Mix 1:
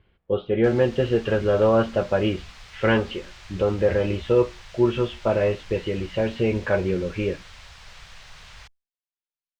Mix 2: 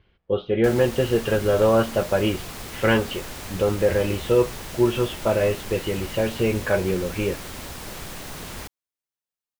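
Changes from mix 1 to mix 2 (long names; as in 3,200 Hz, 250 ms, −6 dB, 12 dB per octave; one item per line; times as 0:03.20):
background: remove guitar amp tone stack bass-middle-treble 10-0-10
master: remove high-frequency loss of the air 150 metres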